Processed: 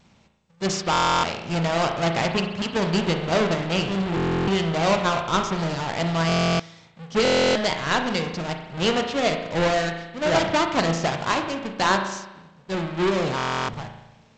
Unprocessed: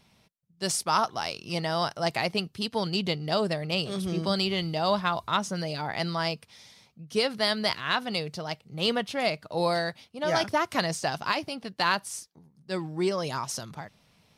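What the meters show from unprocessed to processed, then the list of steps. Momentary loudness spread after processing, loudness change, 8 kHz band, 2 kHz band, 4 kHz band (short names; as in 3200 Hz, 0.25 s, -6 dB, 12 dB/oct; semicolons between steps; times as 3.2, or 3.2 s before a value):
8 LU, +5.5 dB, +3.0 dB, +5.5 dB, +2.5 dB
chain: half-waves squared off; spring tank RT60 1 s, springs 36 ms, chirp 30 ms, DRR 4.5 dB; stuck buffer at 0.91/4.15/6.27/7.23/13.36, samples 1024, times 13; G.722 64 kbps 16000 Hz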